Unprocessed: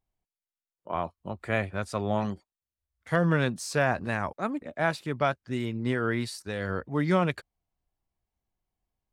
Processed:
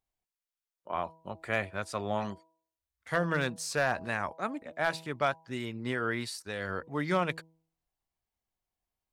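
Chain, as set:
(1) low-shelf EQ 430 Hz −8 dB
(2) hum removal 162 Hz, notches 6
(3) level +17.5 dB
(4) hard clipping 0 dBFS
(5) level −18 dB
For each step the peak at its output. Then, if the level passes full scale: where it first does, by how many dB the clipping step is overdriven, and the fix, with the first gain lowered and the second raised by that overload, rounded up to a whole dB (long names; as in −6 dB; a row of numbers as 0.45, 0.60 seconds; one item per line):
−12.5, −12.0, +5.5, 0.0, −18.0 dBFS
step 3, 5.5 dB
step 3 +11.5 dB, step 5 −12 dB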